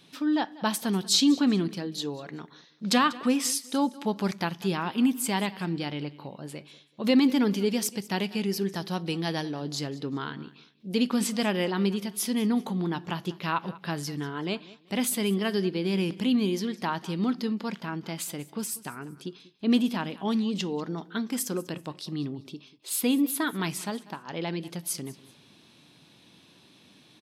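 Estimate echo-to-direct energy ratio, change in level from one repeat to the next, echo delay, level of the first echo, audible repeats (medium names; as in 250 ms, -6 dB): -19.0 dB, -10.5 dB, 192 ms, -19.5 dB, 2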